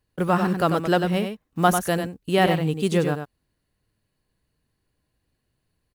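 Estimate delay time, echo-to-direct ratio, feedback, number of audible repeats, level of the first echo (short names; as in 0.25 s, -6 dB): 96 ms, -7.0 dB, no steady repeat, 1, -7.0 dB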